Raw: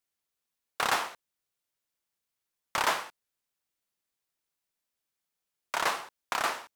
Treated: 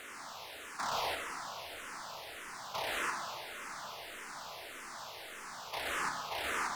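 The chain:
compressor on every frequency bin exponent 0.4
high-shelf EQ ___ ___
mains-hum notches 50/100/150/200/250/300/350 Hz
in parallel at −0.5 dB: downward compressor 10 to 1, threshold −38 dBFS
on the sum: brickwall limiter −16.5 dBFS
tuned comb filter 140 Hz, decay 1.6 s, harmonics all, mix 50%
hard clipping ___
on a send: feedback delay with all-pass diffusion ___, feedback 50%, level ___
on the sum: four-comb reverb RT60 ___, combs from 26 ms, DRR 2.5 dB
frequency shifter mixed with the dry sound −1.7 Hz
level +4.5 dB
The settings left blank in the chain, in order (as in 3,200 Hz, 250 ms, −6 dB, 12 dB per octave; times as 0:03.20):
9,100 Hz, −8.5 dB, −36 dBFS, 805 ms, −15 dB, 2.3 s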